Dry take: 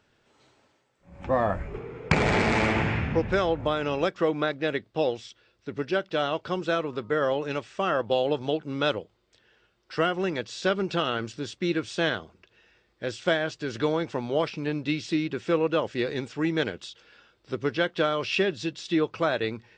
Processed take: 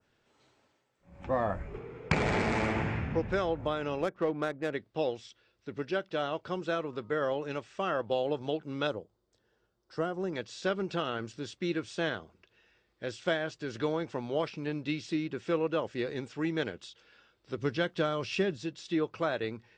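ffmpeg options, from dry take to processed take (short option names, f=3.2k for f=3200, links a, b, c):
-filter_complex "[0:a]asettb=1/sr,asplit=3[a][b][c];[a]atrim=end=4.014[d];[b]atrim=start=4.01:end=4.73,asetpts=PTS-STARTPTS,afade=t=in:d=0.004:c=qsin,afade=t=out:st=0.716:d=0.004:c=qsin,adynamicsmooth=sensitivity=2.5:basefreq=1.4k[e];[c]atrim=start=4.726[f];[d][e]acrossfade=d=0.004:c1=hsin:c2=qsin[g];[g][f]acrossfade=d=0.004:c1=qsin:c2=hsin,asettb=1/sr,asplit=3[h][i][j];[h]atrim=end=8.874[k];[i]atrim=start=8.87:end=10.33,asetpts=PTS-STARTPTS,afade=t=in:d=0.004:c=qsin,afade=t=out:st=1.456:d=0.004:c=qsin,equalizer=f=2.5k:w=1:g=-15[l];[j]atrim=start=10.326[m];[k][l]acrossfade=d=0.004:c1=hsin:c2=qsin[n];[n][m]acrossfade=d=0.004:c1=qsin:c2=hsin,asettb=1/sr,asplit=3[o][p][q];[o]atrim=end=17.584[r];[p]atrim=start=17.58:end=18.57,asetpts=PTS-STARTPTS,afade=t=in:d=0.004:c=qsin,afade=t=out:st=0.986:d=0.004:c=qsin,bass=f=250:g=6,treble=f=4k:g=5[s];[q]atrim=start=18.566[t];[r][s]acrossfade=d=0.004:c1=hsin:c2=qsin[u];[u][t]acrossfade=d=0.004:c1=qsin:c2=hsin,adynamicequalizer=threshold=0.00794:dfrequency=3400:dqfactor=0.81:tfrequency=3400:tqfactor=0.81:attack=5:release=100:ratio=0.375:range=3:mode=cutabove:tftype=bell,volume=-5.5dB"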